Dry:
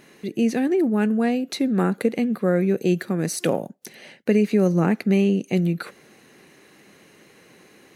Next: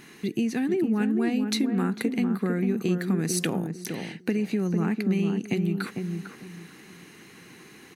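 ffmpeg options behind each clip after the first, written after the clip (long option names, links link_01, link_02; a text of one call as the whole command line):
ffmpeg -i in.wav -filter_complex "[0:a]equalizer=frequency=570:width_type=o:width=0.54:gain=-14,acompressor=threshold=-27dB:ratio=6,asplit=2[link_01][link_02];[link_02]adelay=450,lowpass=frequency=880:poles=1,volume=-4.5dB,asplit=2[link_03][link_04];[link_04]adelay=450,lowpass=frequency=880:poles=1,volume=0.27,asplit=2[link_05][link_06];[link_06]adelay=450,lowpass=frequency=880:poles=1,volume=0.27,asplit=2[link_07][link_08];[link_08]adelay=450,lowpass=frequency=880:poles=1,volume=0.27[link_09];[link_03][link_05][link_07][link_09]amix=inputs=4:normalize=0[link_10];[link_01][link_10]amix=inputs=2:normalize=0,volume=3.5dB" out.wav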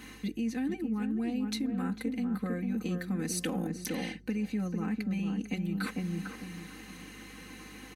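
ffmpeg -i in.wav -af "aecho=1:1:3.9:1,areverse,acompressor=threshold=-28dB:ratio=6,areverse,aeval=exprs='val(0)+0.00224*(sin(2*PI*50*n/s)+sin(2*PI*2*50*n/s)/2+sin(2*PI*3*50*n/s)/3+sin(2*PI*4*50*n/s)/4+sin(2*PI*5*50*n/s)/5)':channel_layout=same,volume=-2dB" out.wav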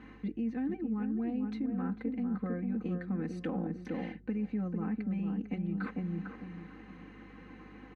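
ffmpeg -i in.wav -af "lowpass=1500,volume=-1.5dB" out.wav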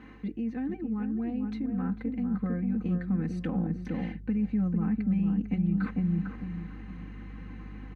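ffmpeg -i in.wav -af "asubboost=boost=5:cutoff=170,volume=2dB" out.wav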